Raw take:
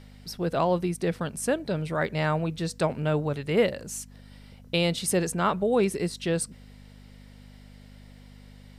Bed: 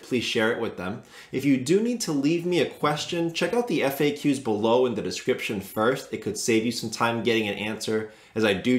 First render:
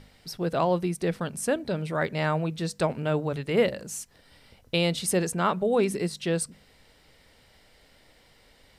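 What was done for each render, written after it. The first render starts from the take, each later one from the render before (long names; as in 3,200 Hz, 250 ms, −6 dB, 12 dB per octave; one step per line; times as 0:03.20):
hum removal 50 Hz, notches 5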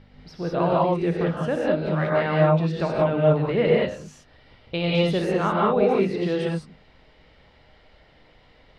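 high-frequency loss of the air 240 metres
reverb whose tail is shaped and stops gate 220 ms rising, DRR −4 dB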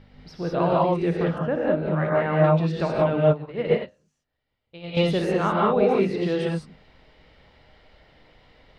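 0:01.38–0:02.44: low-pass filter 2,100 Hz
0:03.31–0:04.97: expander for the loud parts 2.5 to 1, over −33 dBFS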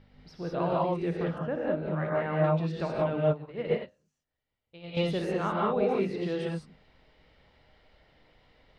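level −7 dB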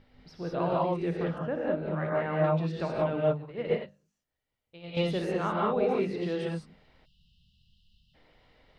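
mains-hum notches 50/100/150/200 Hz
0:07.05–0:08.15: time-frequency box erased 230–2,600 Hz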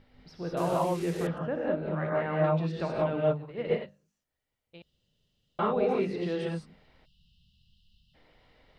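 0:00.57–0:01.27: linear delta modulator 64 kbit/s, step −38 dBFS
0:04.82–0:05.59: fill with room tone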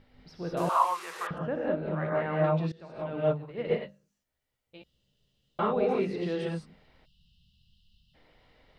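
0:00.69–0:01.31: high-pass with resonance 1,100 Hz, resonance Q 4.8
0:02.72–0:03.28: fade in quadratic, from −18 dB
0:03.80–0:05.61: double-tracking delay 15 ms −5.5 dB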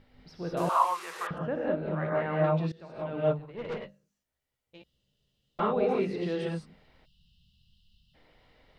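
0:03.39–0:05.60: tube saturation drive 31 dB, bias 0.5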